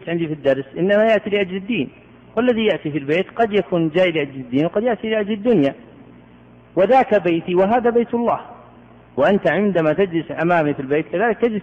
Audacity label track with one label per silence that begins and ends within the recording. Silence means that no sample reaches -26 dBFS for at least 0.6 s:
5.720000	6.770000	silence
8.430000	9.180000	silence